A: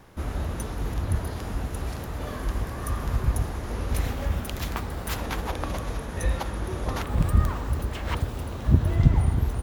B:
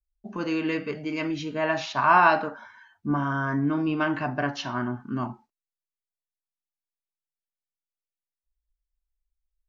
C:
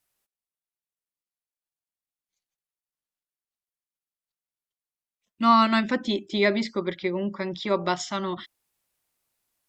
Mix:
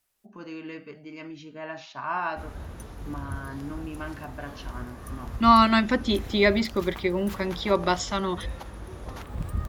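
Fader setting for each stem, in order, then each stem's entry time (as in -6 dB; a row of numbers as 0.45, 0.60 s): -9.5, -11.5, +1.5 dB; 2.20, 0.00, 0.00 s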